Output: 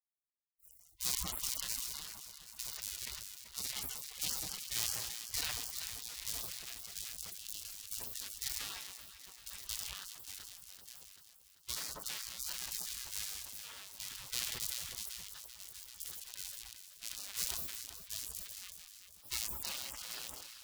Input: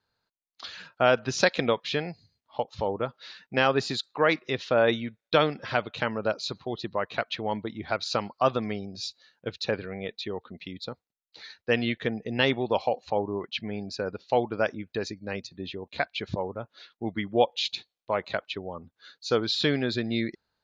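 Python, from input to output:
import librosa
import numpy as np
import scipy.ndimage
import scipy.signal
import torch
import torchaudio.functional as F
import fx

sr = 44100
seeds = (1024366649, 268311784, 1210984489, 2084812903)

y = fx.cycle_switch(x, sr, every=2, mode='inverted')
y = scipy.signal.sosfilt(scipy.signal.butter(2, 96.0, 'highpass', fs=sr, output='sos'), y)
y = fx.spec_gate(y, sr, threshold_db=-30, keep='weak')
y = fx.low_shelf(y, sr, hz=160.0, db=5.5)
y = fx.spec_box(y, sr, start_s=7.1, length_s=0.55, low_hz=620.0, high_hz=2600.0, gain_db=-15)
y = fx.echo_alternate(y, sr, ms=194, hz=1100.0, feedback_pct=78, wet_db=-9.0)
y = fx.sustainer(y, sr, db_per_s=27.0)
y = y * 10.0 ** (2.0 / 20.0)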